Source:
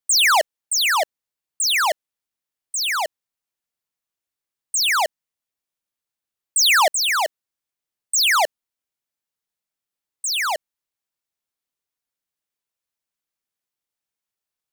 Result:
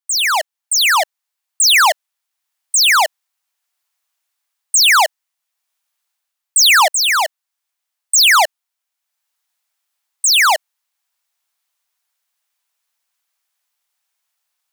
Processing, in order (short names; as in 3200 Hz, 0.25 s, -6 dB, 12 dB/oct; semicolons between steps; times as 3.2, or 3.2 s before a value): HPF 690 Hz 24 dB/oct; AGC gain up to 14 dB; gain -1 dB